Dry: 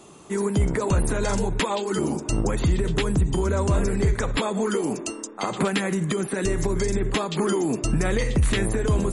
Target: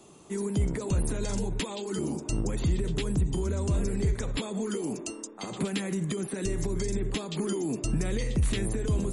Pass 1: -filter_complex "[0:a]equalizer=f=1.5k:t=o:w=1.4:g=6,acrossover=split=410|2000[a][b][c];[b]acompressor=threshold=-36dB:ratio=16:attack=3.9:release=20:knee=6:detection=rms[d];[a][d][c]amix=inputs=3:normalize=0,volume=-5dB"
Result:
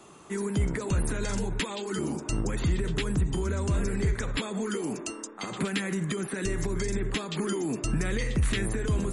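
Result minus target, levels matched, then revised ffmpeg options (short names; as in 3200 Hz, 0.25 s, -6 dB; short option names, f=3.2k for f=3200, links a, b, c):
2000 Hz band +6.0 dB
-filter_complex "[0:a]equalizer=f=1.5k:t=o:w=1.4:g=-4.5,acrossover=split=410|2000[a][b][c];[b]acompressor=threshold=-36dB:ratio=16:attack=3.9:release=20:knee=6:detection=rms[d];[a][d][c]amix=inputs=3:normalize=0,volume=-5dB"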